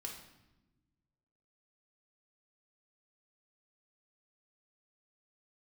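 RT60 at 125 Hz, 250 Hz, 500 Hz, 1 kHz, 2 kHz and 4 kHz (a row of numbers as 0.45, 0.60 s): 1.9, 1.7, 1.2, 0.90, 0.85, 0.80 s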